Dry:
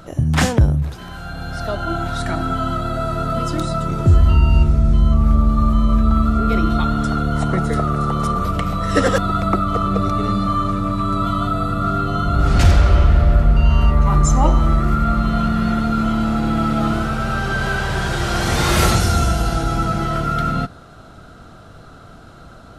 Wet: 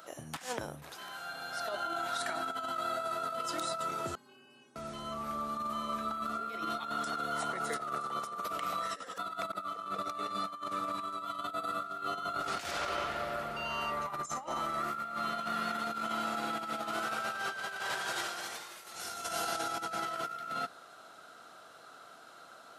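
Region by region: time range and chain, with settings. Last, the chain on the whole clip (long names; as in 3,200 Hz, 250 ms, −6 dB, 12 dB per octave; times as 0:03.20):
0:04.15–0:04.76: ring modulation 190 Hz + stiff-string resonator 190 Hz, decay 0.6 s, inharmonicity 0.008
whole clip: Bessel high-pass filter 730 Hz, order 2; high-shelf EQ 9,900 Hz +7 dB; compressor whose output falls as the input rises −27 dBFS, ratio −0.5; level −9 dB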